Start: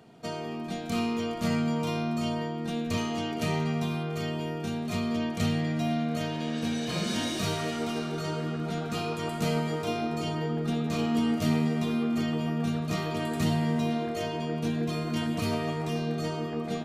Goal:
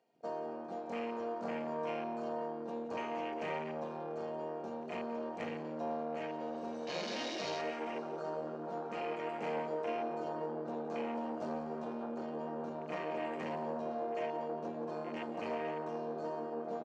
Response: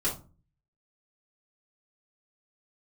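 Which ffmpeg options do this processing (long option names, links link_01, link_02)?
-af "aeval=exprs='(tanh(25.1*val(0)+0.55)-tanh(0.55))/25.1':channel_layout=same,afwtdn=0.00891,highpass=390,equalizer=frequency=540:width_type=q:width=4:gain=6,equalizer=frequency=850:width_type=q:width=4:gain=3,equalizer=frequency=1300:width_type=q:width=4:gain=-6,equalizer=frequency=3500:width_type=q:width=4:gain=-6,lowpass=frequency=7200:width=0.5412,lowpass=frequency=7200:width=1.3066,aecho=1:1:177:0.168,volume=-1dB"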